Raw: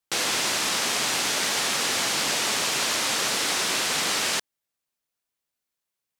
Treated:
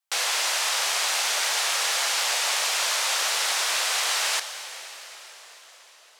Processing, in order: high-pass 580 Hz 24 dB/octave; reverberation RT60 5.8 s, pre-delay 10 ms, DRR 9 dB

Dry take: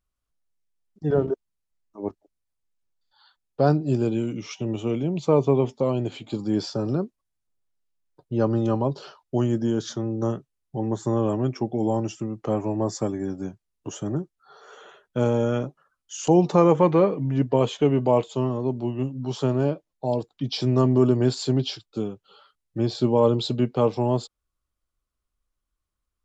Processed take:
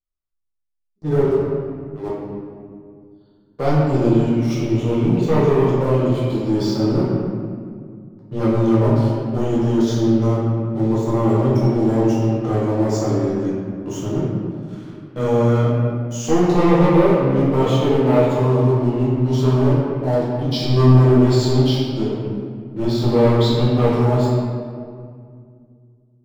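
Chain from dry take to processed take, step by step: waveshaping leveller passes 3; reverberation RT60 2.1 s, pre-delay 6 ms, DRR -8 dB; trim -13 dB

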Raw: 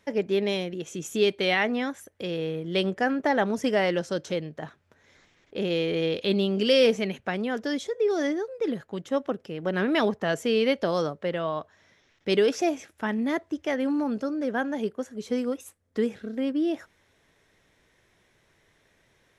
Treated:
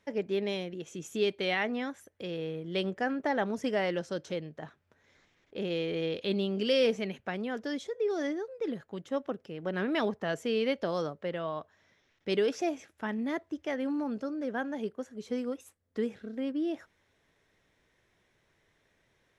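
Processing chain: treble shelf 8.3 kHz -6 dB; trim -6 dB

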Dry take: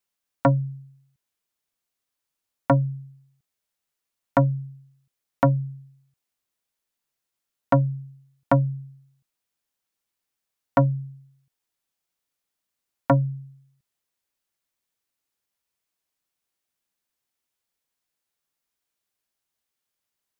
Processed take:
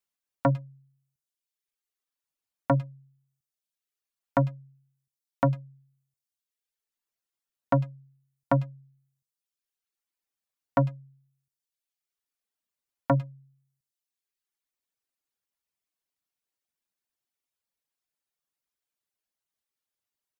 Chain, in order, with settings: speakerphone echo 100 ms, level -12 dB; reverb removal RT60 1.1 s; trim -4.5 dB

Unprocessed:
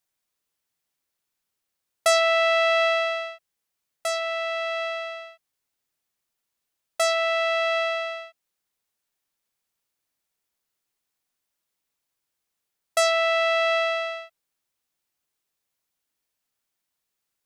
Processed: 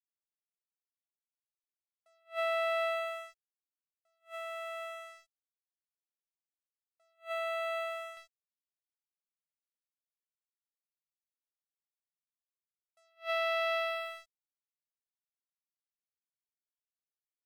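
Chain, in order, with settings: treble shelf 2.4 kHz -9 dB, from 8.17 s -2 dB; crossover distortion -38 dBFS; attacks held to a fixed rise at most 280 dB/s; trim -8 dB

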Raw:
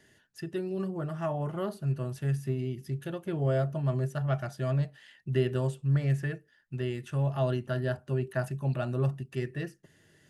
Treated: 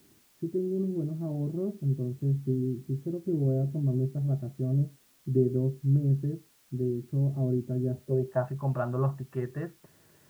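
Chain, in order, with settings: low-pass sweep 310 Hz -> 1.1 kHz, 7.94–8.47 s; added noise white -64 dBFS

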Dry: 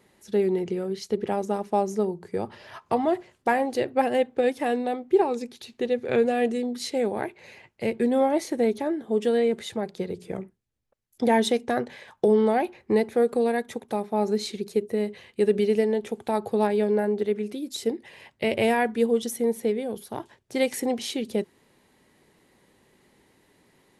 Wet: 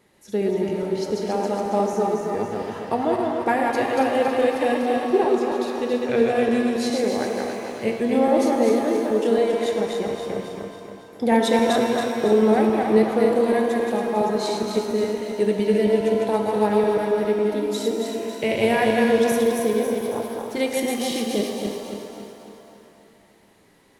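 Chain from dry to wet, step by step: backward echo that repeats 138 ms, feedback 70%, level -3 dB; pitch-shifted reverb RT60 2.2 s, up +7 st, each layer -8 dB, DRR 5 dB

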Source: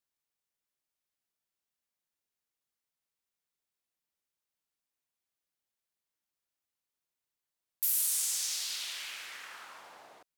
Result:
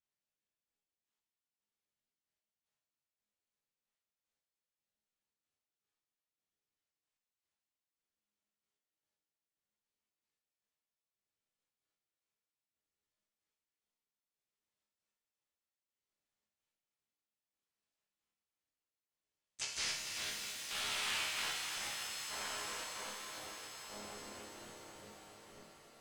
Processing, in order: square wave that keeps the level; band-stop 1.5 kHz, Q 9.7; in parallel at -1.5 dB: peak limiter -27.5 dBFS, peak gain reduction 10 dB; on the sum: wide varispeed 0.399×; rotary cabinet horn 0.65 Hz; trance gate "xxxx.x..x..." 113 bpm -24 dB; harmony voices -12 st -4 dB, +4 st -3 dB; ring modulator 130 Hz; chord resonator C#2 minor, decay 0.63 s; on a send: thinning echo 272 ms, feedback 77%, high-pass 160 Hz, level -9 dB; on the sum: pitch-shifted reverb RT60 3.9 s, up +7 st, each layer -2 dB, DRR 5.5 dB; trim +4 dB

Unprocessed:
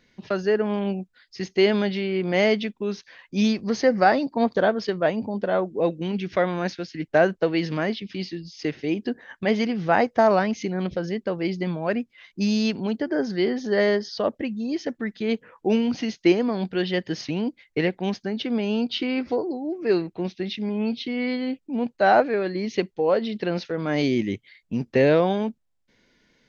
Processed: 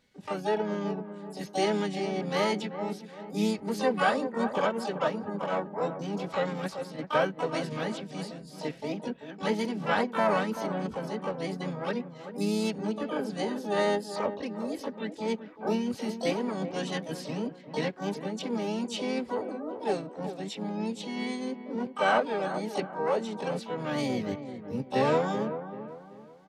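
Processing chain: harmony voices -3 st -10 dB, +7 st -7 dB, +12 st -6 dB; comb of notches 350 Hz; feedback echo behind a low-pass 385 ms, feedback 36%, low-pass 1.5 kHz, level -10 dB; trim -8 dB

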